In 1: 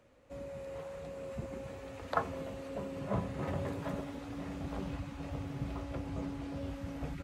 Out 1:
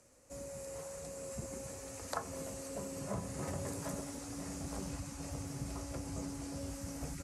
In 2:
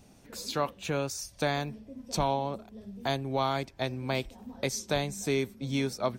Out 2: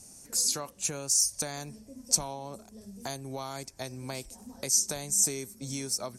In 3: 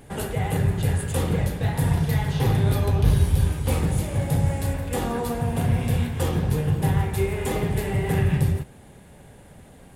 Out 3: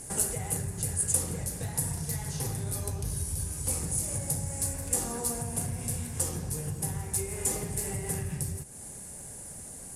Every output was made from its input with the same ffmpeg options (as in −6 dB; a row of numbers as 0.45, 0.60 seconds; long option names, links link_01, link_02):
-af "lowpass=frequency=11000:width=0.5412,lowpass=frequency=11000:width=1.3066,acompressor=threshold=-33dB:ratio=3,aexciter=amount=11.1:drive=4.1:freq=5100,volume=-2.5dB"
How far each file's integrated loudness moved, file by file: −2.5, +3.0, −7.5 LU